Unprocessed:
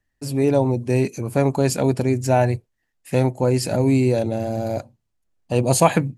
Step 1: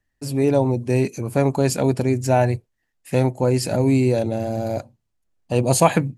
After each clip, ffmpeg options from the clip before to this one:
-af anull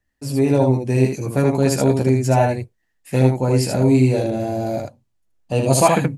-af "aecho=1:1:15|77:0.596|0.708,volume=0.891"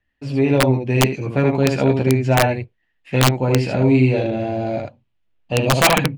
-af "lowpass=f=2900:t=q:w=2.3,aeval=exprs='(mod(1.78*val(0)+1,2)-1)/1.78':c=same"

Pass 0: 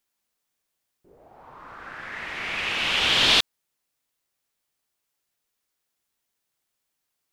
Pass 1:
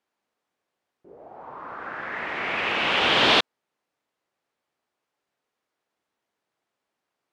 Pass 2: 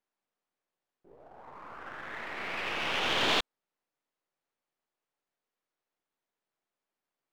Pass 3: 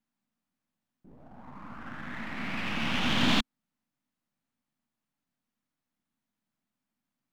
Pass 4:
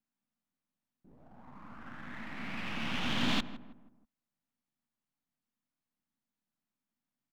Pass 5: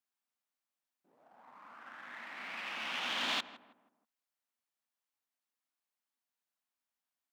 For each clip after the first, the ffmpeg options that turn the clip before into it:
-af "bandpass=f=550:t=q:w=0.51:csg=0,volume=2.51"
-af "aeval=exprs='if(lt(val(0),0),0.447*val(0),val(0))':c=same,volume=0.473"
-af "lowshelf=f=310:t=q:w=3:g=9.5"
-filter_complex "[0:a]asplit=2[s0][s1];[s1]adelay=161,lowpass=f=1200:p=1,volume=0.224,asplit=2[s2][s3];[s3]adelay=161,lowpass=f=1200:p=1,volume=0.44,asplit=2[s4][s5];[s5]adelay=161,lowpass=f=1200:p=1,volume=0.44,asplit=2[s6][s7];[s7]adelay=161,lowpass=f=1200:p=1,volume=0.44[s8];[s0][s2][s4][s6][s8]amix=inputs=5:normalize=0,volume=0.501"
-af "highpass=590"

